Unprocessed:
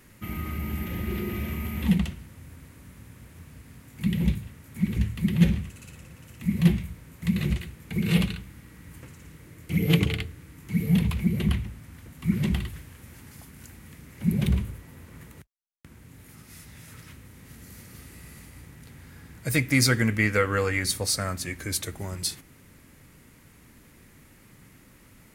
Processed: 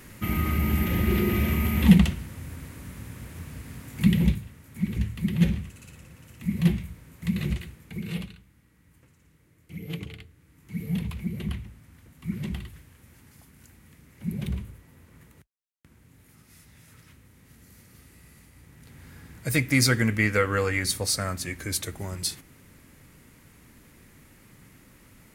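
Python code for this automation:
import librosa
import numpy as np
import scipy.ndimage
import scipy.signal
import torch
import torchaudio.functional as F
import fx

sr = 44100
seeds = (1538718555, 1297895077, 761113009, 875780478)

y = fx.gain(x, sr, db=fx.line((4.02, 7.0), (4.47, -2.0), (7.7, -2.0), (8.34, -14.0), (10.28, -14.0), (10.81, -7.0), (18.55, -7.0), (19.07, 0.0)))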